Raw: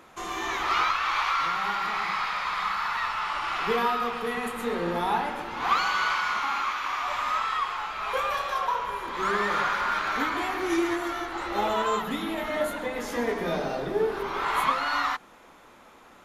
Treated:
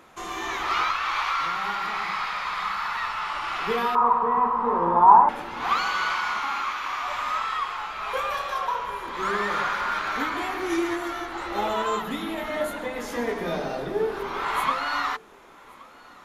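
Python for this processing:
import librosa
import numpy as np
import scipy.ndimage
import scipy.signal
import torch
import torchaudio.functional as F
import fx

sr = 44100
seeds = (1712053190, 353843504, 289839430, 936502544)

y = fx.lowpass_res(x, sr, hz=1000.0, q=12.0, at=(3.95, 5.29))
y = y + 10.0 ** (-24.0 / 20.0) * np.pad(y, (int(1123 * sr / 1000.0), 0))[:len(y)]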